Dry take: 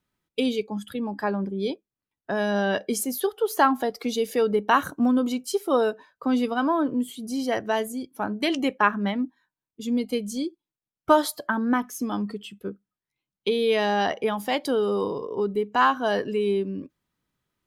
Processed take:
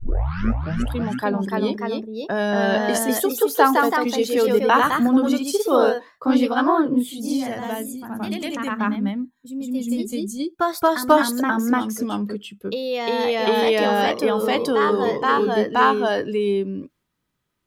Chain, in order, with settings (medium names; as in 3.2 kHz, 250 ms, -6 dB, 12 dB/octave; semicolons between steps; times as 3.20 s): tape start-up on the opening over 0.93 s; time-frequency box 7.42–10.40 s, 250–6200 Hz -9 dB; ever faster or slower copies 361 ms, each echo +1 st, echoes 2; trim +3 dB